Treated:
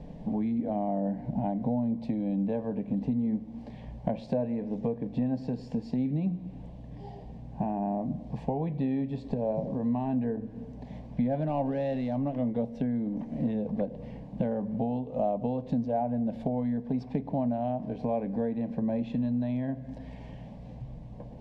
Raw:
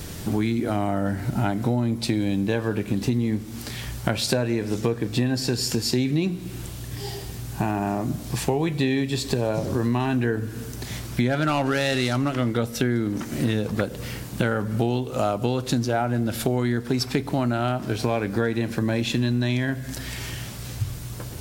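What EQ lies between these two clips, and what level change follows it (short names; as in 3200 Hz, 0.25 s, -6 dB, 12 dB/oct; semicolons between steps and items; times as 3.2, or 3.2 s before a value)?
LPF 1000 Hz 12 dB/oct; fixed phaser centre 360 Hz, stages 6; -2.5 dB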